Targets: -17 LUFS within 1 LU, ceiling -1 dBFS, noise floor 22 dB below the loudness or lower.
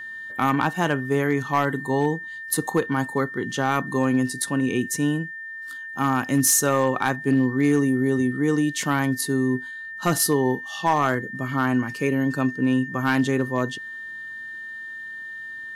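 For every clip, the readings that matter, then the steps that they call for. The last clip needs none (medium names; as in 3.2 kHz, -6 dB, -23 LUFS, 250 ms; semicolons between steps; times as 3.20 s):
clipped samples 0.3%; clipping level -12.0 dBFS; steady tone 1.8 kHz; tone level -33 dBFS; loudness -23.0 LUFS; peak level -12.0 dBFS; loudness target -17.0 LUFS
-> clip repair -12 dBFS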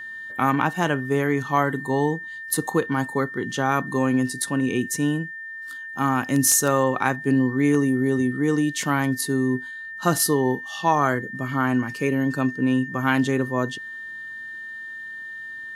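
clipped samples 0.0%; steady tone 1.8 kHz; tone level -33 dBFS
-> band-stop 1.8 kHz, Q 30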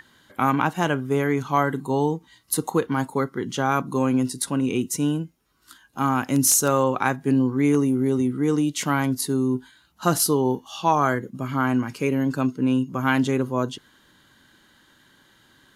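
steady tone not found; loudness -23.0 LUFS; peak level -4.0 dBFS; loudness target -17.0 LUFS
-> trim +6 dB; peak limiter -1 dBFS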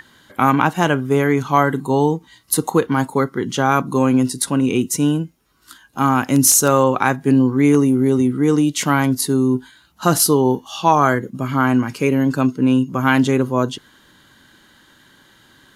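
loudness -17.0 LUFS; peak level -1.0 dBFS; noise floor -53 dBFS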